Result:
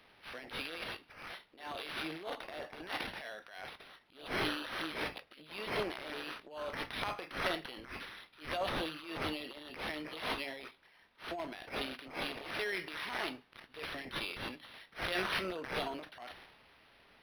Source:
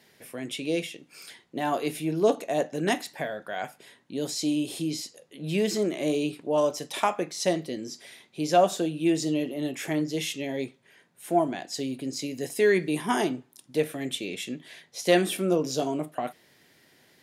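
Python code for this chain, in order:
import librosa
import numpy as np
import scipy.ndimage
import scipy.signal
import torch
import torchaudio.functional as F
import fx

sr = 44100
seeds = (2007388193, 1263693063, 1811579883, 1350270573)

y = np.diff(x, prepend=0.0)
y = fx.transient(y, sr, attack_db=-11, sustain_db=9)
y = np.interp(np.arange(len(y)), np.arange(len(y))[::6], y[::6])
y = y * 10.0 ** (4.0 / 20.0)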